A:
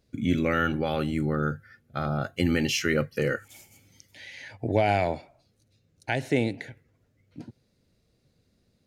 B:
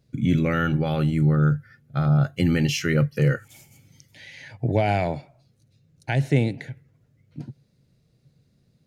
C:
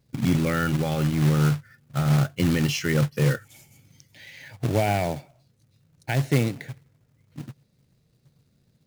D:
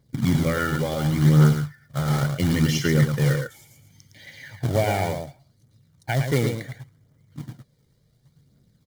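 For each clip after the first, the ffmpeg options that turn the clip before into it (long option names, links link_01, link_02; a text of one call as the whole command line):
ffmpeg -i in.wav -af "equalizer=frequency=140:width=2.2:gain=13.5" out.wav
ffmpeg -i in.wav -af "acrusher=bits=3:mode=log:mix=0:aa=0.000001,volume=-1.5dB" out.wav
ffmpeg -i in.wav -af "aecho=1:1:111:0.501,aphaser=in_gain=1:out_gain=1:delay=2.4:decay=0.36:speed=0.7:type=triangular,asuperstop=centerf=2600:order=4:qfactor=6.5" out.wav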